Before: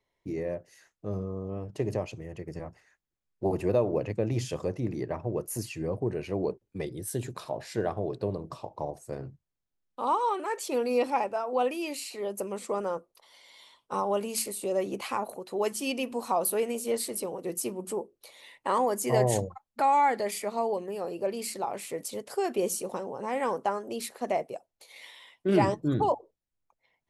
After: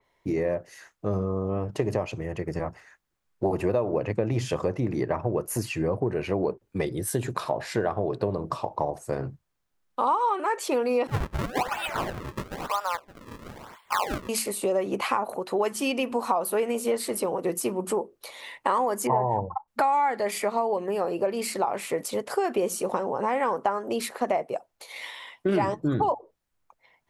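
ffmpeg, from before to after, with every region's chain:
-filter_complex "[0:a]asettb=1/sr,asplit=3[a][b][c];[a]atrim=end=11.074[d];[b]atrim=start=11.07:end=14.29,asetpts=PTS-STARTPTS,afade=t=in:d=0.004:c=qsin,afade=t=out:st=3.216:d=0.004:c=qsin,highpass=f=830:w=0.5412,highpass=f=830:w=1.3066,aecho=1:1:567:0.2,atrim=end_sample=142002,acrusher=samples=34:mix=1:aa=0.000001:lfo=1:lforange=54.4:lforate=1[e];[c]atrim=start=14.286[f];[d][e]acrossfade=d=0.004:c1=hsin:c2=qsin[g];[g][f]acrossfade=d=0.004:c1=qsin:c2=hsin,asettb=1/sr,asplit=3[h][i][j];[h]atrim=end=19.074[k];[i]atrim=start=19.07:end=19.68,asetpts=PTS-STARTPTS,afade=t=in:d=0.004:c=qsin,afade=t=out:st=0.606:d=0.004:c=qsin,lowpass=f=910:t=q:w=9.1,equalizer=f=650:w=0.54:g=-6.5[l];[j]atrim=start=19.676[m];[k][l]acrossfade=d=0.004:c1=hsin:c2=qsin[n];[n][m]acrossfade=d=0.004:c1=qsin:c2=hsin,equalizer=f=1.2k:t=o:w=1.7:g=6,acompressor=threshold=-30dB:ratio=4,adynamicequalizer=threshold=0.00251:dfrequency=3400:dqfactor=0.7:tfrequency=3400:tqfactor=0.7:attack=5:release=100:ratio=0.375:range=2.5:mode=cutabove:tftype=highshelf,volume=7.5dB"

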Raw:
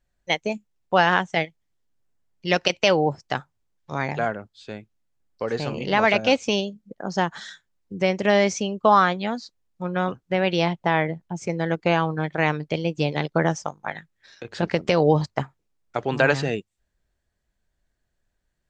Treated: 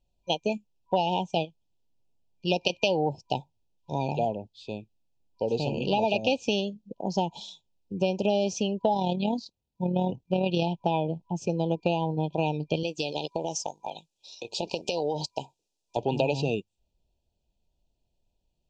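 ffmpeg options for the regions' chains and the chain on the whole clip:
-filter_complex "[0:a]asettb=1/sr,asplit=3[a][b][c];[a]atrim=end=8.944[d];[b]atrim=start=8.94:end=10.64,asetpts=PTS-STARTPTS,afade=t=in:d=0.004:c=qsin,afade=t=out:st=1.696:d=0.004:c=qsin,highpass=f=79:p=1,lowshelf=f=170:g=11.5,tremolo=f=38:d=0.462[e];[c]atrim=start=10.636[f];[d][e]acrossfade=d=0.004:c1=hsin:c2=qsin[g];[g][f]acrossfade=d=0.004:c1=qsin:c2=hsin,asettb=1/sr,asplit=3[h][i][j];[h]atrim=end=12.834[k];[i]atrim=start=12.83:end=15.97,asetpts=PTS-STARTPTS,afade=t=in:d=0.004:c=qsin,afade=t=out:st=3.136:d=0.004:c=qsin,bass=f=250:g=-13,treble=f=4k:g=13,acompressor=threshold=-23dB:ratio=10:attack=3.2:release=140:knee=1:detection=peak[l];[j]atrim=start=15.966[m];[k][l]acrossfade=d=0.004:c1=hsin:c2=qsin[n];[n][m]acrossfade=d=0.004:c1=qsin:c2=hsin,afftfilt=real='re*(1-between(b*sr/4096,980,2400))':imag='im*(1-between(b*sr/4096,980,2400))':win_size=4096:overlap=0.75,lowpass=5.9k,acompressor=threshold=-21dB:ratio=6"

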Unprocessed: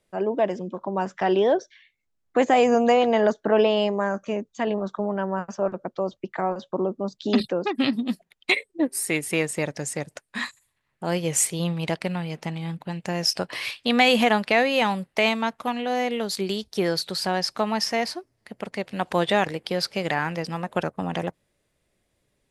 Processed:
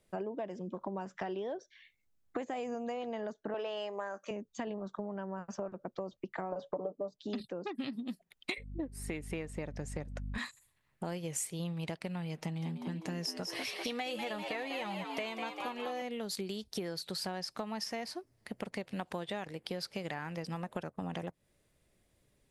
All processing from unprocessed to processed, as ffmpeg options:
-filter_complex "[0:a]asettb=1/sr,asplit=3[a][b][c];[a]atrim=end=3.544[d];[b]atrim=start=3.54:end=4.31,asetpts=PTS-STARTPTS,afade=t=in:d=0.004:c=qsin,afade=t=out:st=0.766:d=0.004:c=qsin,acontrast=68,highpass=500[e];[c]atrim=start=4.306[f];[d][e]acrossfade=d=0.004:c1=hsin:c2=qsin[g];[g][f]acrossfade=d=0.004:c1=qsin:c2=hsin,asettb=1/sr,asplit=3[h][i][j];[h]atrim=end=6.524[k];[i]atrim=start=6.52:end=7.22,asetpts=PTS-STARTPTS,afade=t=in:d=0.004:c=qsin,afade=t=out:st=0.696:d=0.004:c=qsin,equalizer=f=570:w=0.79:g=14.5,aecho=1:1:6.8:0.74,atrim=end_sample=30870[l];[j]atrim=start=7.216[m];[k][l]acrossfade=d=0.004:c1=hsin:c2=qsin[n];[n][m]acrossfade=d=0.004:c1=qsin:c2=hsin,asettb=1/sr,asplit=3[o][p][q];[o]atrim=end=8.584[r];[p]atrim=start=8.58:end=10.38,asetpts=PTS-STARTPTS,afade=t=in:d=0.004:c=qsin,afade=t=out:st=1.796:d=0.004:c=qsin,lowpass=f=2.2k:p=1,aeval=exprs='val(0)+0.0141*(sin(2*PI*50*n/s)+sin(2*PI*2*50*n/s)/2+sin(2*PI*3*50*n/s)/3+sin(2*PI*4*50*n/s)/4+sin(2*PI*5*50*n/s)/5)':c=same[s];[q]atrim=start=10.376[t];[r][s]acrossfade=d=0.004:c1=hsin:c2=qsin[u];[u][t]acrossfade=d=0.004:c1=qsin:c2=hsin,asettb=1/sr,asplit=3[v][w][x];[v]atrim=end=12.384[y];[w]atrim=start=12.38:end=16.02,asetpts=PTS-STARTPTS,afade=t=in:d=0.004:c=qsin,afade=t=out:st=3.636:d=0.004:c=qsin,aecho=1:1:6.4:0.47,atrim=end_sample=160524,asplit=7[z][aa][ab][ac][ad][ae][af];[aa]adelay=197,afreqshift=80,volume=-7.5dB[ag];[ab]adelay=394,afreqshift=160,volume=-13.2dB[ah];[ac]adelay=591,afreqshift=240,volume=-18.9dB[ai];[ad]adelay=788,afreqshift=320,volume=-24.5dB[aj];[ae]adelay=985,afreqshift=400,volume=-30.2dB[ak];[af]adelay=1182,afreqshift=480,volume=-35.9dB[al];[z][ag][ah][ai][aj][ak][al]amix=inputs=7:normalize=0,atrim=end_sample=160524[am];[x]atrim=start=16.016[an];[y][am]acrossfade=d=0.004:c1=hsin:c2=qsin[ao];[ao][an]acrossfade=d=0.004:c1=qsin:c2=hsin,lowshelf=f=270:g=4.5,acompressor=threshold=-33dB:ratio=10,highshelf=f=9.4k:g=5,volume=-2.5dB"

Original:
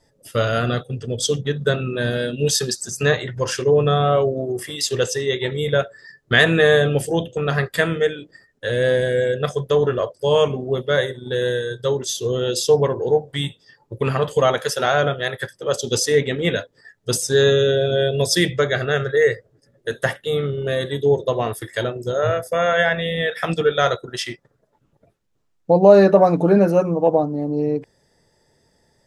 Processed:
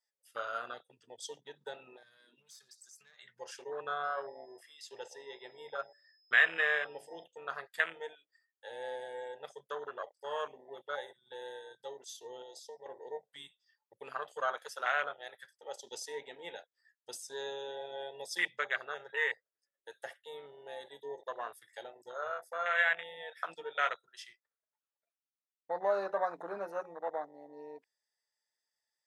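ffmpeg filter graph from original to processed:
-filter_complex "[0:a]asettb=1/sr,asplit=3[a][b][c];[a]atrim=end=1.964[d];[b]atrim=start=1.96:end=3.19,asetpts=PTS-STARTPTS,afade=t=in:d=0.004:c=qsin,afade=t=out:st=1.226:d=0.004:c=qsin,aeval=exprs='(tanh(3.16*val(0)+0.4)-tanh(0.4))/3.16':c=same,equalizer=f=2.7k:t=o:w=0.38:g=-6.5,acompressor=threshold=-28dB:ratio=16:attack=3.2:release=140:knee=1:detection=peak[e];[c]atrim=start=3.186[f];[d][e]acrossfade=d=0.004:c1=hsin:c2=qsin[g];[g][f]acrossfade=d=0.004:c1=qsin:c2=hsin,asettb=1/sr,asplit=3[h][i][j];[h]atrim=end=4.044[k];[i]atrim=start=4.04:end=7.24,asetpts=PTS-STARTPTS,afade=t=in:d=0.004:c=qsin,afade=t=out:st=3.196:d=0.004:c=qsin,highshelf=f=4.3k:g=-9,bandreject=f=71.65:t=h:w=4,bandreject=f=143.3:t=h:w=4,bandreject=f=214.95:t=h:w=4,bandreject=f=286.6:t=h:w=4,bandreject=f=358.25:t=h:w=4,bandreject=f=429.9:t=h:w=4,bandreject=f=501.55:t=h:w=4,bandreject=f=573.2:t=h:w=4,bandreject=f=644.85:t=h:w=4,aeval=exprs='val(0)+0.00501*sin(2*PI*5100*n/s)':c=same[l];[j]atrim=start=7.236[m];[k][l]acrossfade=d=0.004:c1=hsin:c2=qsin[n];[n][m]acrossfade=d=0.004:c1=qsin:c2=hsin,asettb=1/sr,asplit=3[o][p][q];[o]atrim=end=12.424[r];[p]atrim=start=12.42:end=12.86,asetpts=PTS-STARTPTS,afade=t=in:d=0.004:c=qsin,afade=t=out:st=0.436:d=0.004:c=qsin,equalizer=f=230:w=2.1:g=-13.5,acrossover=split=93|2100|5500[s][t][u][v];[s]acompressor=threshold=-55dB:ratio=3[w];[t]acompressor=threshold=-24dB:ratio=3[x];[u]acompressor=threshold=-31dB:ratio=3[y];[v]acompressor=threshold=-37dB:ratio=3[z];[w][x][y][z]amix=inputs=4:normalize=0,asuperstop=centerf=2000:order=4:qfactor=0.68[aa];[q]atrim=start=12.856[ab];[r][aa]acrossfade=d=0.004:c1=hsin:c2=qsin[ac];[ac][ab]acrossfade=d=0.004:c1=qsin:c2=hsin,afwtdn=0.0891,highpass=1.4k,volume=-5.5dB"

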